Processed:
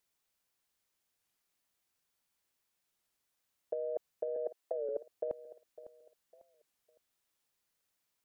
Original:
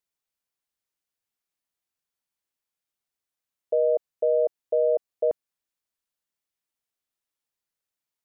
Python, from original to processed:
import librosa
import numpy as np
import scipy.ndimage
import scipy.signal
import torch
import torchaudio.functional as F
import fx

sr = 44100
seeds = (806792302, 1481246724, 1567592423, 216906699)

y = fx.highpass(x, sr, hz=270.0, slope=24, at=(4.36, 4.9))
y = fx.over_compress(y, sr, threshold_db=-28.0, ratio=-0.5)
y = fx.echo_feedback(y, sr, ms=554, feedback_pct=32, wet_db=-15.5)
y = fx.record_warp(y, sr, rpm=33.33, depth_cents=160.0)
y = y * librosa.db_to_amplitude(-4.5)